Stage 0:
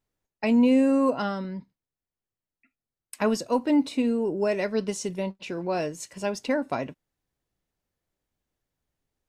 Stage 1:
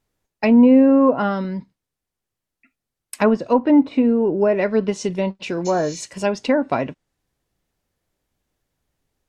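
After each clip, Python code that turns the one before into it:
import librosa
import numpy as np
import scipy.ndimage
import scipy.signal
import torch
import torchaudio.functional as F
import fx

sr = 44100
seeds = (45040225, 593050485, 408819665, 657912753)

y = fx.spec_repair(x, sr, seeds[0], start_s=5.68, length_s=0.31, low_hz=1900.0, high_hz=7300.0, source='after')
y = fx.env_lowpass_down(y, sr, base_hz=1500.0, full_db=-20.5)
y = F.gain(torch.from_numpy(y), 8.0).numpy()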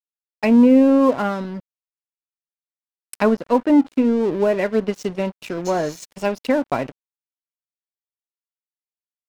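y = np.sign(x) * np.maximum(np.abs(x) - 10.0 ** (-33.5 / 20.0), 0.0)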